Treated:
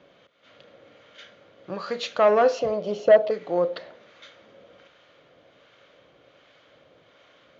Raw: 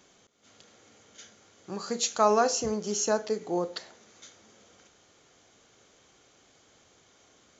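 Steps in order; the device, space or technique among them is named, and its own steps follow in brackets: 2.59–3.31 fifteen-band EQ 630 Hz +10 dB, 1600 Hz -11 dB, 6300 Hz -6 dB; guitar amplifier with harmonic tremolo (harmonic tremolo 1.3 Hz, depth 50%, crossover 810 Hz; soft clip -19 dBFS, distortion -12 dB; speaker cabinet 76–3500 Hz, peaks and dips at 88 Hz -9 dB, 220 Hz -7 dB, 390 Hz -6 dB, 560 Hz +9 dB, 810 Hz -6 dB); gain +8.5 dB

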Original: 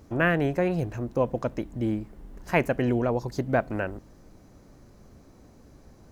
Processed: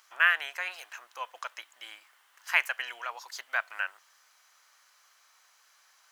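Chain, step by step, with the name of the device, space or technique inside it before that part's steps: headphones lying on a table (HPF 1200 Hz 24 dB/oct; bell 3100 Hz +6 dB 0.24 oct); gain +4 dB

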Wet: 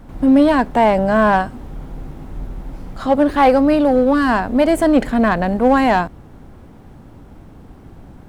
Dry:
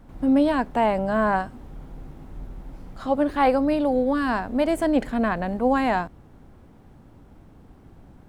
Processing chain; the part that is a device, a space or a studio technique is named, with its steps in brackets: parallel distortion (in parallel at -5 dB: hard clip -20.5 dBFS, distortion -10 dB); on the sum: gain +5 dB

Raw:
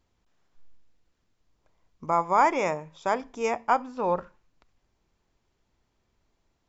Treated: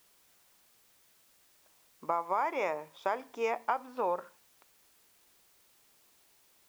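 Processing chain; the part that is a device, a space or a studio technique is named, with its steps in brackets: baby monitor (BPF 370–4000 Hz; compressor, threshold -27 dBFS, peak gain reduction 11.5 dB; white noise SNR 28 dB)

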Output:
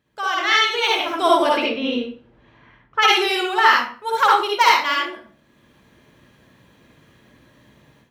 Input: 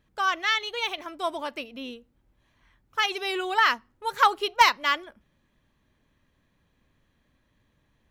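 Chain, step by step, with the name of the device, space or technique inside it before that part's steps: 1.56–3.01 LPF 4300 Hz -> 2100 Hz 12 dB/oct; far laptop microphone (reverb RT60 0.45 s, pre-delay 50 ms, DRR -3 dB; HPF 110 Hz 12 dB/oct; AGC gain up to 14 dB); gain -1 dB

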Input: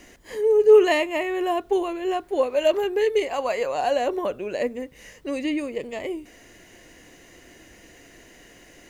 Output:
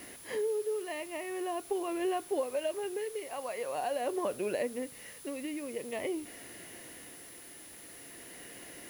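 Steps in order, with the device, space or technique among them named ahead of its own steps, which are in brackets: medium wave at night (BPF 100–4400 Hz; compressor, threshold -29 dBFS, peak gain reduction 18 dB; tremolo 0.46 Hz, depth 54%; whine 10000 Hz -51 dBFS; white noise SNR 18 dB)

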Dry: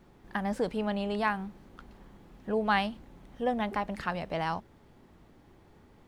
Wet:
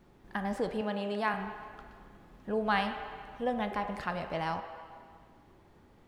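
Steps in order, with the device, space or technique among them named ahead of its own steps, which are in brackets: filtered reverb send (on a send: HPF 350 Hz 24 dB/oct + LPF 3400 Hz + reverb RT60 2.0 s, pre-delay 22 ms, DRR 6.5 dB); 0.81–1.34 on the sum: HPF 170 Hz; gain -2.5 dB

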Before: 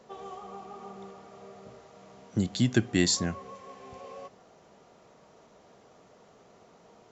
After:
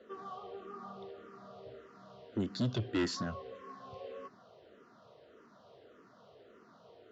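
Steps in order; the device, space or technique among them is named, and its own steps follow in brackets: barber-pole phaser into a guitar amplifier (endless phaser -1.7 Hz; soft clip -28 dBFS, distortion -8 dB; speaker cabinet 91–4400 Hz, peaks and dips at 170 Hz -8 dB, 830 Hz -10 dB, 1400 Hz +3 dB, 2300 Hz -9 dB); gain +2.5 dB

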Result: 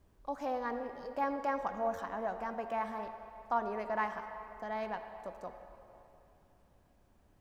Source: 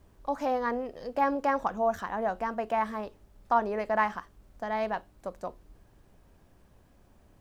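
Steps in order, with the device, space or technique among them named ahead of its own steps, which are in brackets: filtered reverb send (on a send: HPF 250 Hz + LPF 5000 Hz + reverb RT60 3.0 s, pre-delay 58 ms, DRR 7.5 dB); on the sum: gain -7.5 dB

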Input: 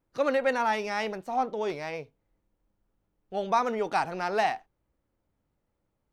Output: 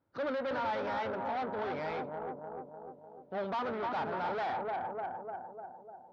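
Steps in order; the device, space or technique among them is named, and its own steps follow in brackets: 1.74–3.34 bell 2000 Hz +4 dB 2.6 oct; analogue delay pedal into a guitar amplifier (analogue delay 0.299 s, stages 2048, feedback 59%, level -7.5 dB; tube stage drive 36 dB, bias 0.5; speaker cabinet 82–4100 Hz, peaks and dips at 100 Hz +7 dB, 270 Hz +4 dB, 590 Hz +5 dB, 880 Hz +5 dB, 1400 Hz +7 dB, 2700 Hz -5 dB)

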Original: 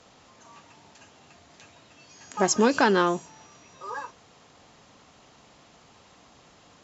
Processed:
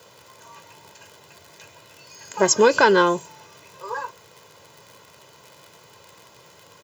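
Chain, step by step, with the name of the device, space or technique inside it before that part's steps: vinyl LP (crackle 61/s -38 dBFS; white noise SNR 39 dB); HPF 94 Hz 24 dB/oct; comb 2 ms, depth 68%; gain +3.5 dB

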